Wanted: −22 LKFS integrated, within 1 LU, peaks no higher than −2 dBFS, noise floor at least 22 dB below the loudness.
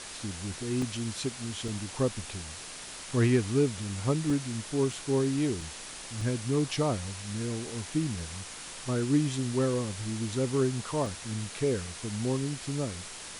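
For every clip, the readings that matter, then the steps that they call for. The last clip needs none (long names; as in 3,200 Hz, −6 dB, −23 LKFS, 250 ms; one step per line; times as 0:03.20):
number of dropouts 8; longest dropout 2.5 ms; background noise floor −43 dBFS; target noise floor −53 dBFS; integrated loudness −31.0 LKFS; sample peak −14.0 dBFS; target loudness −22.0 LKFS
→ repair the gap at 0:00.82/0:01.68/0:04.30/0:04.93/0:05.61/0:06.21/0:08.20/0:11.06, 2.5 ms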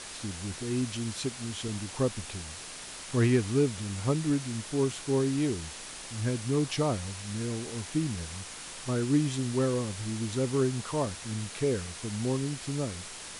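number of dropouts 0; background noise floor −43 dBFS; target noise floor −53 dBFS
→ broadband denoise 10 dB, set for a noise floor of −43 dBFS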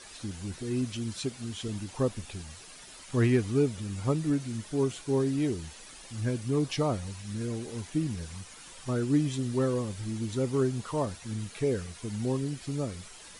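background noise floor −49 dBFS; target noise floor −53 dBFS
→ broadband denoise 6 dB, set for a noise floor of −49 dBFS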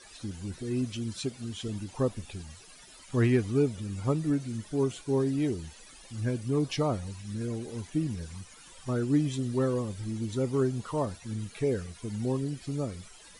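background noise floor −52 dBFS; target noise floor −53 dBFS
→ broadband denoise 6 dB, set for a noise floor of −52 dBFS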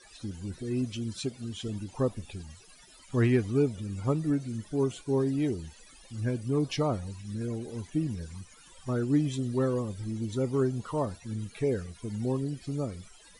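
background noise floor −55 dBFS; integrated loudness −31.0 LKFS; sample peak −14.5 dBFS; target loudness −22.0 LKFS
→ level +9 dB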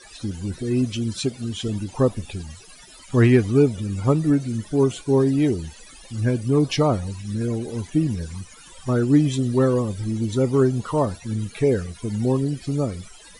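integrated loudness −22.0 LKFS; sample peak −5.5 dBFS; background noise floor −46 dBFS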